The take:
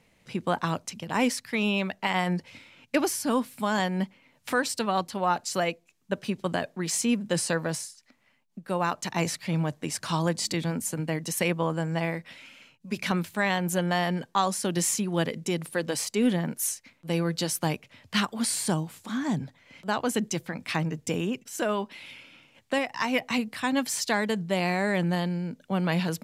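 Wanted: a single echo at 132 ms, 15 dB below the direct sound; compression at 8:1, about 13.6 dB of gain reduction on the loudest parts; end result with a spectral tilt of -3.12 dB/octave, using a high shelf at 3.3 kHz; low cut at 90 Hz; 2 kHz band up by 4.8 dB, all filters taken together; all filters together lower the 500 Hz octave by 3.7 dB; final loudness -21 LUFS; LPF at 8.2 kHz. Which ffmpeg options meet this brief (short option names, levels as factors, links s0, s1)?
-af "highpass=90,lowpass=8200,equalizer=f=500:t=o:g=-5,equalizer=f=2000:t=o:g=4,highshelf=f=3300:g=7,acompressor=threshold=0.0224:ratio=8,aecho=1:1:132:0.178,volume=6.31"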